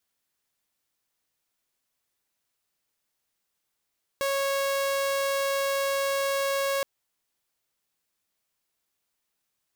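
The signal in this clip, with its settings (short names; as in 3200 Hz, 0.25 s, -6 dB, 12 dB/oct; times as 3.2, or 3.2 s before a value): tone saw 551 Hz -22 dBFS 2.62 s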